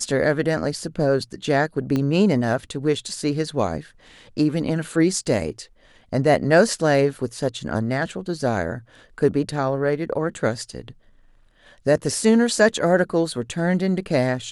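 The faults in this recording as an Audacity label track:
1.960000	1.960000	pop -12 dBFS

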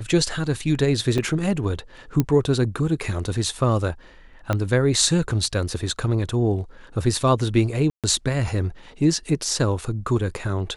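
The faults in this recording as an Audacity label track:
1.180000	1.190000	dropout 5.6 ms
2.200000	2.200000	pop -7 dBFS
4.530000	4.530000	pop -10 dBFS
7.900000	8.040000	dropout 137 ms

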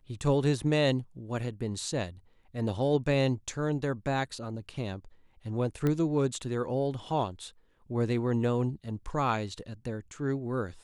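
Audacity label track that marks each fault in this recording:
5.870000	5.870000	pop -17 dBFS

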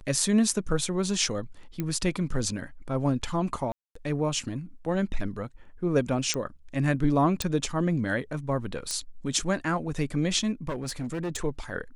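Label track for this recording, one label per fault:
1.800000	1.800000	pop -17 dBFS
3.720000	3.950000	dropout 234 ms
6.340000	6.340000	pop -12 dBFS
7.420000	7.420000	pop -12 dBFS
8.910000	8.910000	pop -16 dBFS
10.680000	11.410000	clipped -27.5 dBFS

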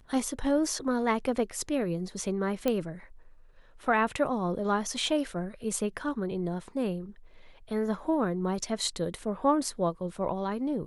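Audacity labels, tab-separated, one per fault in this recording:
2.680000	2.680000	pop -14 dBFS

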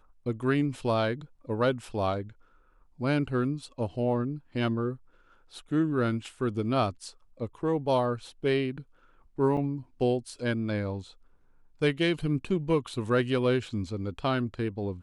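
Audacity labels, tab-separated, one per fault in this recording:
9.570000	9.570000	dropout 3.6 ms

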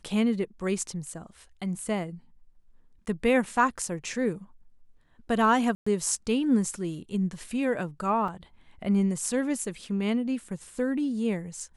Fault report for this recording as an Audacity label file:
5.750000	5.870000	dropout 115 ms
8.280000	8.280000	dropout 3.1 ms

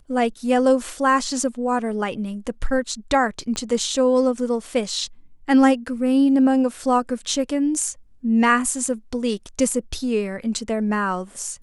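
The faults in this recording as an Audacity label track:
3.560000	3.560000	pop -15 dBFS

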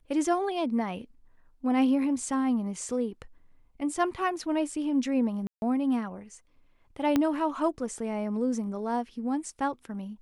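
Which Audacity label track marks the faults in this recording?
5.470000	5.620000	dropout 151 ms
7.160000	7.160000	pop -12 dBFS

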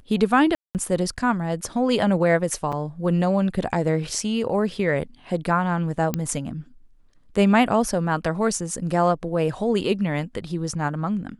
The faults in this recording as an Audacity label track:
0.550000	0.750000	dropout 198 ms
2.720000	2.730000	dropout 6.3 ms
6.140000	6.140000	pop -9 dBFS

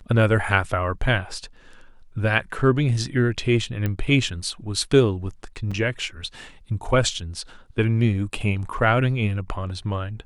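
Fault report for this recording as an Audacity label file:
3.860000	3.860000	pop -13 dBFS
5.710000	5.720000	dropout 5.4 ms

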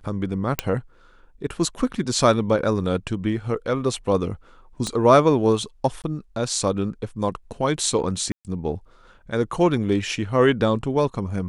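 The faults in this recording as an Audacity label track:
0.590000	0.590000	pop -4 dBFS
4.870000	4.870000	pop -14 dBFS
6.020000	6.040000	dropout 18 ms
8.320000	8.450000	dropout 128 ms

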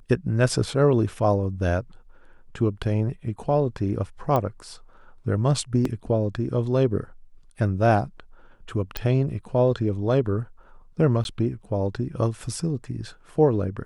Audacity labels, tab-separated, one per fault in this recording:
4.360000	4.360000	pop -12 dBFS
5.850000	5.850000	dropout 3.7 ms
8.970000	8.970000	pop -12 dBFS
11.240000	11.250000	dropout 11 ms

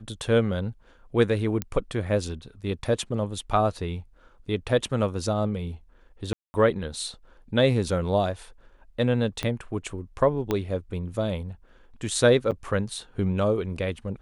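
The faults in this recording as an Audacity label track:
1.620000	1.620000	pop -12 dBFS
6.330000	6.540000	dropout 210 ms
9.430000	9.430000	pop -14 dBFS
10.510000	10.510000	pop -12 dBFS
12.510000	12.520000	dropout 7.4 ms

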